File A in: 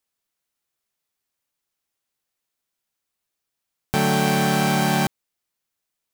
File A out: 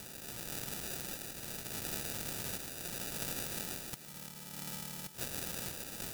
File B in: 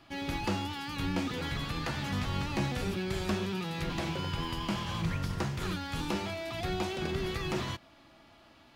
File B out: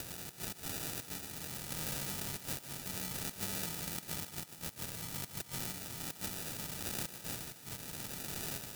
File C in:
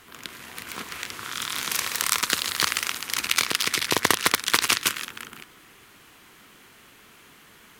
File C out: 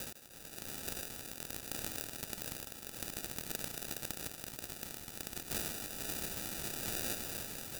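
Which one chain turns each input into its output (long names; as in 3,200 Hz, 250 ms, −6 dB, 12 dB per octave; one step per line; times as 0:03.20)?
compressor on every frequency bin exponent 0.4
treble cut that deepens with the level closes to 1,800 Hz, closed at −13.5 dBFS
gate with flip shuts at −16 dBFS, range −29 dB
octave-band graphic EQ 125/250/500/2,000/4,000/8,000 Hz +10/+5/−10/+11/+7/+8 dB
automatic gain control gain up to 9 dB
in parallel at +1 dB: brickwall limiter −13.5 dBFS
on the sum: downward compressor 12 to 1, threshold −29 dBFS
decimation without filtering 41×
first-order pre-emphasis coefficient 0.9
sample-and-hold tremolo
feedback echo with a high-pass in the loop 152 ms, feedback 54%, high-pass 190 Hz, level −11.5 dB
level +6.5 dB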